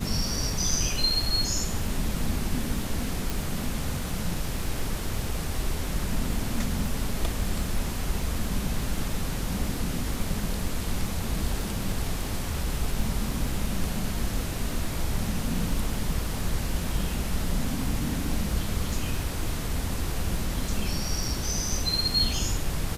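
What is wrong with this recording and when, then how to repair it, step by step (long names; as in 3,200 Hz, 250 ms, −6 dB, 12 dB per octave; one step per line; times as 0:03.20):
surface crackle 35 per second −34 dBFS
0:03.30: click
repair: click removal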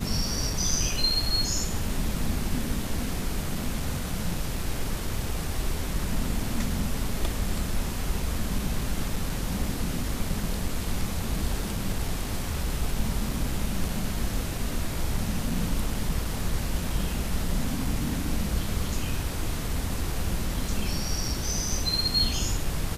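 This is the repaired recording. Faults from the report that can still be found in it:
0:03.30: click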